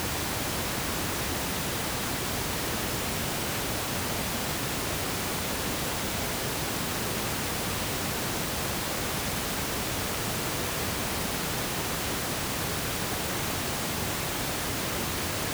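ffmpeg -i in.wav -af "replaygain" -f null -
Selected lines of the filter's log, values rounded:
track_gain = +14.9 dB
track_peak = 0.103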